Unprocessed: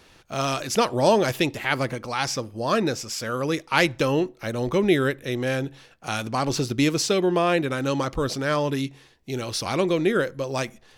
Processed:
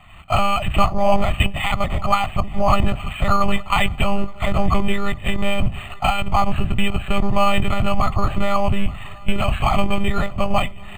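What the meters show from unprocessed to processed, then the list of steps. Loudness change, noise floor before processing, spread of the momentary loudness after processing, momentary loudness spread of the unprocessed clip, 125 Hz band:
+3.0 dB, −54 dBFS, 5 LU, 8 LU, +6.0 dB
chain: sub-octave generator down 1 octave, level +2 dB
camcorder AGC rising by 36 dB per second
low-shelf EQ 490 Hz −11 dB
in parallel at −11.5 dB: sine wavefolder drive 8 dB, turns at −3.5 dBFS
on the sum: one-pitch LPC vocoder at 8 kHz 200 Hz
comb filter 1.6 ms, depth 57%
repeating echo 872 ms, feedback 57%, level −23 dB
dynamic equaliser 1,600 Hz, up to −4 dB, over −35 dBFS, Q 1.5
phaser with its sweep stopped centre 2,400 Hz, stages 8
linearly interpolated sample-rate reduction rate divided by 8×
level +5 dB

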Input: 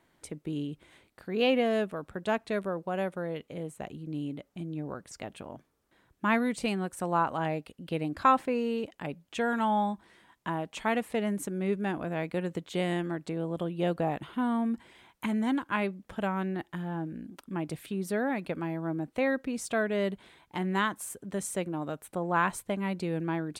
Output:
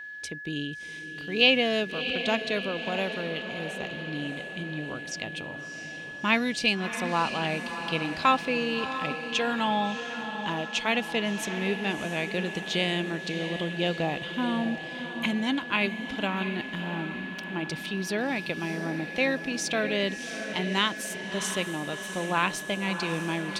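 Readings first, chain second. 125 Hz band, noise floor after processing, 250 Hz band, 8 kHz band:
+0.5 dB, −39 dBFS, +0.5 dB, +5.0 dB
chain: flat-topped bell 3,800 Hz +13 dB
on a send: feedback delay with all-pass diffusion 665 ms, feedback 57%, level −9 dB
on the sum: steady tone 1,700 Hz −38 dBFS

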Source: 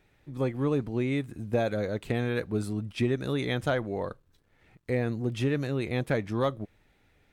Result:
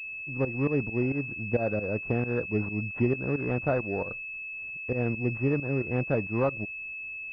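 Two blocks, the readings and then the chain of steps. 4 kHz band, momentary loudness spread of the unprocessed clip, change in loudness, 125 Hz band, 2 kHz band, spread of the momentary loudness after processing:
below −15 dB, 6 LU, +0.5 dB, +0.5 dB, +5.5 dB, 8 LU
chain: fake sidechain pumping 134 BPM, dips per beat 2, −16 dB, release 121 ms
switching amplifier with a slow clock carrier 2,600 Hz
level +1.5 dB

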